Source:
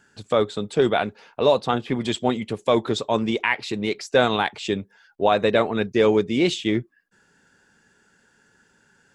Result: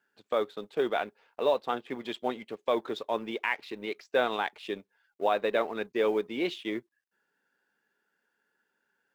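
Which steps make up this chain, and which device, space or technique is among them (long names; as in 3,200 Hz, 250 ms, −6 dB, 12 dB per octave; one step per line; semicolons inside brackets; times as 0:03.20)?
phone line with mismatched companding (band-pass filter 330–3,400 Hz; mu-law and A-law mismatch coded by A)
level −7 dB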